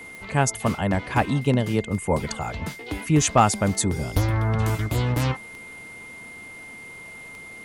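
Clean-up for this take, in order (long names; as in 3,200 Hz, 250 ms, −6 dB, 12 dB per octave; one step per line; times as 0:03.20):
clipped peaks rebuilt −6.5 dBFS
click removal
notch filter 2,100 Hz, Q 30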